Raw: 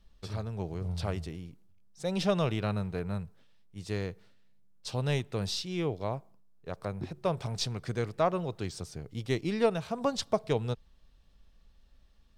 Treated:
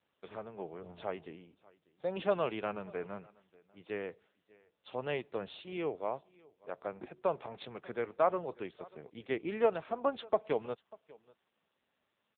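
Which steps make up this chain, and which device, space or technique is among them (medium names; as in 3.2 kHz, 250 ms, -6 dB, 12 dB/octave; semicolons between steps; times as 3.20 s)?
satellite phone (band-pass 350–3100 Hz; delay 592 ms -23.5 dB; AMR-NB 6.7 kbps 8 kHz)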